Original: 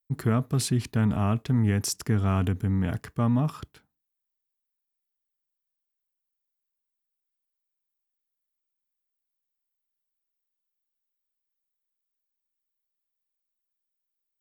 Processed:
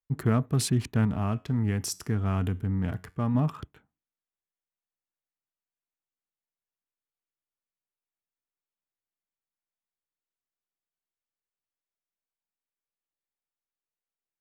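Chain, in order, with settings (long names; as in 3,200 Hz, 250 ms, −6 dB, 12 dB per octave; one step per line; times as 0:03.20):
adaptive Wiener filter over 9 samples
0:01.05–0:03.35: tuned comb filter 91 Hz, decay 0.37 s, harmonics all, mix 40%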